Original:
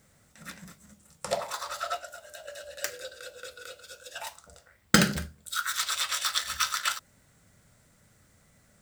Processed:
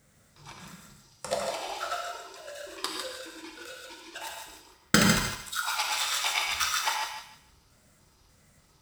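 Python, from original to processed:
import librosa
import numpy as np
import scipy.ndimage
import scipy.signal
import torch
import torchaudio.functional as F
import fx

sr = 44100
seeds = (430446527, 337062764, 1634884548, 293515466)

y = fx.pitch_trill(x, sr, semitones=-7.5, every_ms=296)
y = fx.echo_thinned(y, sr, ms=152, feedback_pct=28, hz=730.0, wet_db=-6)
y = fx.rev_gated(y, sr, seeds[0], gate_ms=190, shape='flat', drr_db=1.0)
y = F.gain(torch.from_numpy(y), -2.0).numpy()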